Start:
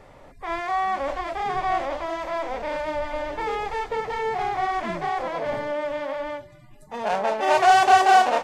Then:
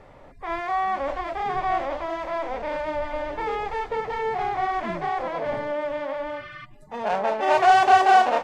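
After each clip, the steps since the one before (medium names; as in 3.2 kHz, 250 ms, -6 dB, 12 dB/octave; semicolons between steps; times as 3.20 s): treble shelf 5.4 kHz -10.5 dB; spectral replace 6.33–6.62 s, 1.1–6.1 kHz before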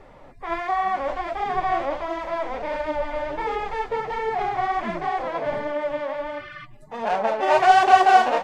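flange 1.4 Hz, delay 2.4 ms, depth 6.7 ms, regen +46%; trim +5 dB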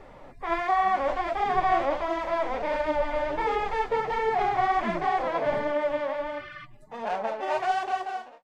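fade out at the end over 2.69 s; hum notches 50/100/150 Hz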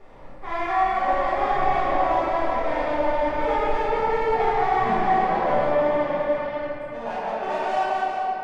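simulated room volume 200 m³, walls hard, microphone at 1.3 m; trim -6 dB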